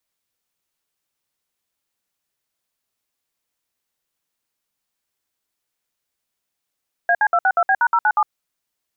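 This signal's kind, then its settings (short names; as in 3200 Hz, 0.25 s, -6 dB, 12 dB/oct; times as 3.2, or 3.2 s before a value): DTMF "AC262B#097", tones 59 ms, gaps 61 ms, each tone -15.5 dBFS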